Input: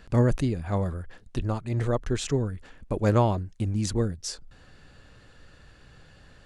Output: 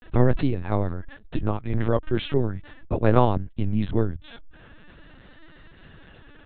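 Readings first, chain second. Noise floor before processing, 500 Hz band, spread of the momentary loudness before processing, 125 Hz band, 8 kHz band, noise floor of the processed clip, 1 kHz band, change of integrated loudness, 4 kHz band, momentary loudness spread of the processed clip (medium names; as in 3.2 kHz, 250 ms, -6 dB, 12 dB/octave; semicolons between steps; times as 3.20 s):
-54 dBFS, +3.0 dB, 13 LU, +1.0 dB, under -40 dB, -50 dBFS, +4.0 dB, +2.5 dB, -1.0 dB, 11 LU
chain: LPC vocoder at 8 kHz pitch kept; vibrato 0.41 Hz 72 cents; trim +4 dB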